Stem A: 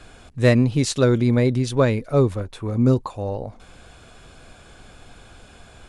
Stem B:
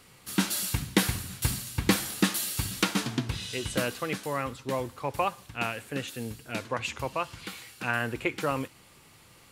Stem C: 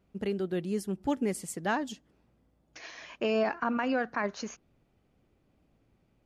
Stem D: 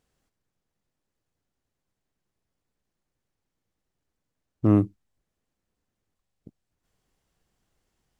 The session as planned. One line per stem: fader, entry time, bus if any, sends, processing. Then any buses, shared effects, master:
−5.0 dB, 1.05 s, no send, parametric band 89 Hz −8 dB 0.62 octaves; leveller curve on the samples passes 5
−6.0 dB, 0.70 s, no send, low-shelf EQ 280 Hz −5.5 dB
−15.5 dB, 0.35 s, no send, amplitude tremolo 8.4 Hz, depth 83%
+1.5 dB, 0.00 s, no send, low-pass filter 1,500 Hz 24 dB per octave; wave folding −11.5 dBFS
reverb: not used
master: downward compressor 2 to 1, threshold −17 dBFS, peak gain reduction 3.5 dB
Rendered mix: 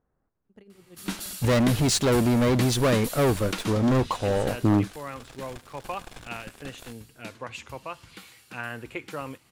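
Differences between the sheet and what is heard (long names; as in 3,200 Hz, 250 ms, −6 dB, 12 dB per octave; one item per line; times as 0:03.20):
stem A −5.0 dB → −12.5 dB
stem B: missing low-shelf EQ 280 Hz −5.5 dB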